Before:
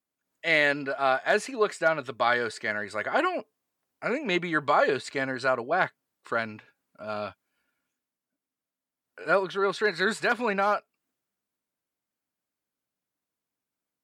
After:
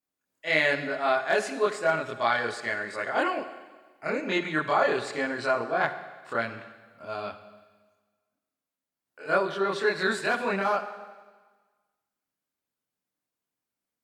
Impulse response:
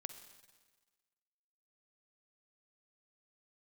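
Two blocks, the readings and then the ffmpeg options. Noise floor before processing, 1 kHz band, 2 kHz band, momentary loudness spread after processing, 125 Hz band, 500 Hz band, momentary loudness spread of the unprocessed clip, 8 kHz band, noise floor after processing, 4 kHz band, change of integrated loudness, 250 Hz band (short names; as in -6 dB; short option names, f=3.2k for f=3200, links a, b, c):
under -85 dBFS, -0.5 dB, -0.5 dB, 14 LU, -0.5 dB, -0.5 dB, 11 LU, -0.5 dB, under -85 dBFS, -0.5 dB, -0.5 dB, -0.5 dB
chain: -filter_complex "[0:a]asplit=2[a][b];[1:a]atrim=start_sample=2205,adelay=26[c];[b][c]afir=irnorm=-1:irlink=0,volume=7dB[d];[a][d]amix=inputs=2:normalize=0,volume=-5.5dB"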